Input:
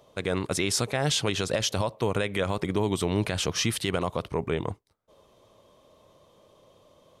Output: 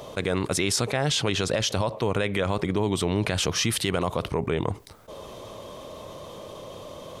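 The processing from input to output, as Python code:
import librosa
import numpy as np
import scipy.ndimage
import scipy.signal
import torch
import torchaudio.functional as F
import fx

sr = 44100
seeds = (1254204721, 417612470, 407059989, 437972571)

y = fx.high_shelf(x, sr, hz=9800.0, db=-9.0, at=(0.76, 3.31))
y = fx.env_flatten(y, sr, amount_pct=50)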